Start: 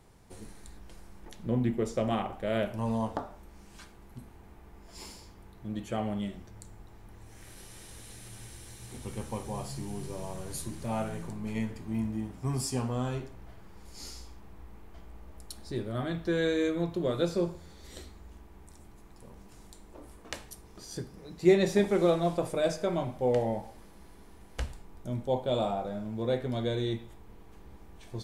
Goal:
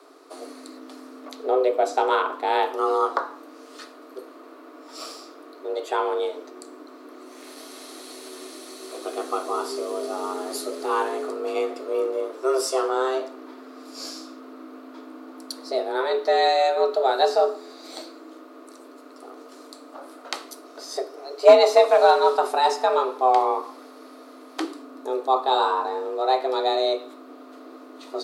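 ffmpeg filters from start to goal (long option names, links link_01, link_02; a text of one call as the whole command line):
ffmpeg -i in.wav -af "equalizer=frequency=160:width_type=o:width=0.67:gain=8,equalizer=frequency=400:width_type=o:width=0.67:gain=6,equalizer=frequency=1000:width_type=o:width=0.67:gain=11,equalizer=frequency=4000:width_type=o:width=0.67:gain=10,aeval=exprs='clip(val(0),-1,0.282)':channel_layout=same,afreqshift=260,volume=3.5dB" out.wav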